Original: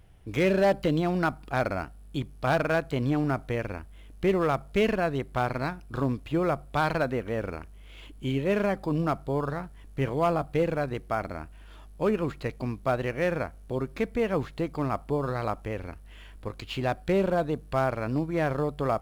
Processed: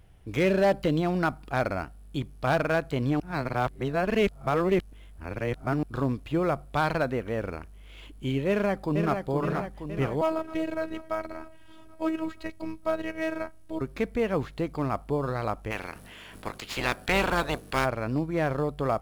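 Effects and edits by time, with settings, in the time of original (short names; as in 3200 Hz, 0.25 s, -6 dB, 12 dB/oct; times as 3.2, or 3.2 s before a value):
3.2–5.83 reverse
8.48–9.19 echo throw 0.47 s, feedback 60%, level -5.5 dB
10.21–13.81 robotiser 320 Hz
15.7–17.84 spectral limiter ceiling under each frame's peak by 22 dB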